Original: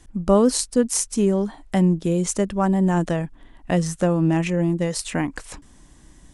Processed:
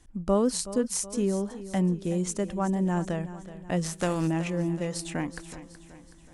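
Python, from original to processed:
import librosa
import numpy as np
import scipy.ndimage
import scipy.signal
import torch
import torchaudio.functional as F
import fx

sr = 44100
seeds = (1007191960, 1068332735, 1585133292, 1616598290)

p1 = fx.spec_flatten(x, sr, power=0.66, at=(3.83, 4.26), fade=0.02)
p2 = p1 + fx.echo_feedback(p1, sr, ms=374, feedback_pct=51, wet_db=-14.5, dry=0)
y = F.gain(torch.from_numpy(p2), -7.5).numpy()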